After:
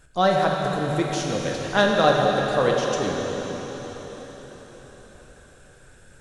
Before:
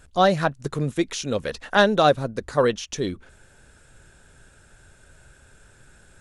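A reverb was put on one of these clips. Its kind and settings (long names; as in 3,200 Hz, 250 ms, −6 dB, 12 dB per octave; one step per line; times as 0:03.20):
dense smooth reverb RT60 4.9 s, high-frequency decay 1×, DRR −1.5 dB
level −3 dB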